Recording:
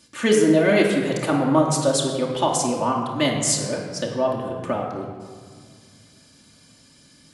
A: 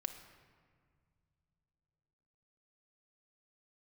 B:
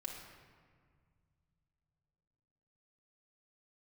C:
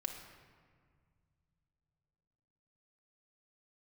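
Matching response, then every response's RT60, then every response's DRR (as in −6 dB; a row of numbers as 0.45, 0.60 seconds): B; 2.0, 1.9, 1.9 seconds; 6.0, −2.0, 2.0 decibels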